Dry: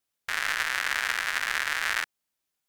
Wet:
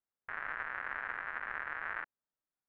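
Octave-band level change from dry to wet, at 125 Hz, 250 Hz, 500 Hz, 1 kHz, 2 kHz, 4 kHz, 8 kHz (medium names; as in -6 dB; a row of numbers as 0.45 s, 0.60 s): no reading, -7.5 dB, -7.5 dB, -8.0 dB, -11.5 dB, -30.5 dB, under -40 dB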